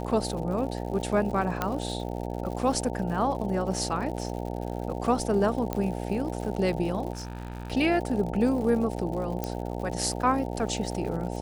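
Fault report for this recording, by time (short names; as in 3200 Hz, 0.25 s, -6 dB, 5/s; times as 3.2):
buzz 60 Hz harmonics 15 -33 dBFS
crackle 130/s -36 dBFS
1.62 pop -12 dBFS
5.73 pop -15 dBFS
7.13–7.72 clipped -31.5 dBFS
9.44 pop -15 dBFS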